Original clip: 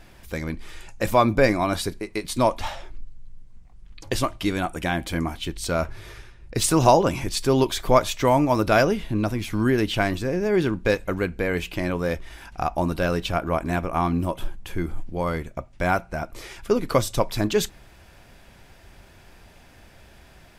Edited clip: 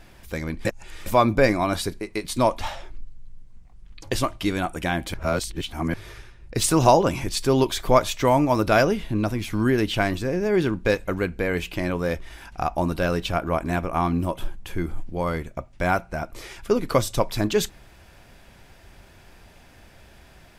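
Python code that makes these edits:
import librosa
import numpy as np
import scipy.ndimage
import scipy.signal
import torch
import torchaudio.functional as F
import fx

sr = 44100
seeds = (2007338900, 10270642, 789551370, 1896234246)

y = fx.edit(x, sr, fx.reverse_span(start_s=0.65, length_s=0.41),
    fx.reverse_span(start_s=5.14, length_s=0.8), tone=tone)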